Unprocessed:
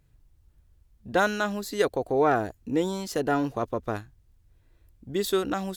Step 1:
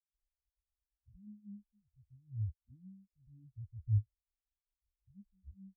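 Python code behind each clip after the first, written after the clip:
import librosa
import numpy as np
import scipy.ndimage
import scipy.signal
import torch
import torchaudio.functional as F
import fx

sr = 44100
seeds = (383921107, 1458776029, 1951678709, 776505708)

y = scipy.signal.sosfilt(scipy.signal.ellip(3, 1.0, 40, [220.0, 5100.0], 'bandstop', fs=sr, output='sos'), x)
y = fx.low_shelf_res(y, sr, hz=120.0, db=12.0, q=1.5)
y = fx.spectral_expand(y, sr, expansion=4.0)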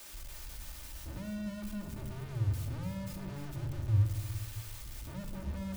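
y = x + 0.5 * 10.0 ** (-42.5 / 20.0) * np.sign(x)
y = y + 10.0 ** (-9.5 / 20.0) * np.pad(y, (int(295 * sr / 1000.0), 0))[:len(y)]
y = fx.room_shoebox(y, sr, seeds[0], volume_m3=3400.0, walls='furnished', distance_m=2.6)
y = y * librosa.db_to_amplitude(3.5)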